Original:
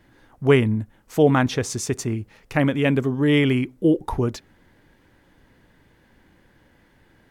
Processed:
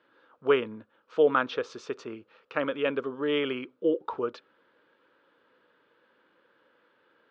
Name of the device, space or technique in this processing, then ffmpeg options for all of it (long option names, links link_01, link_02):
phone earpiece: -af "highpass=480,equalizer=frequency=490:width_type=q:width=4:gain=7,equalizer=frequency=750:width_type=q:width=4:gain=-9,equalizer=frequency=1300:width_type=q:width=4:gain=8,equalizer=frequency=2000:width_type=q:width=4:gain=-10,lowpass=frequency=3700:width=0.5412,lowpass=frequency=3700:width=1.3066,volume=-4dB"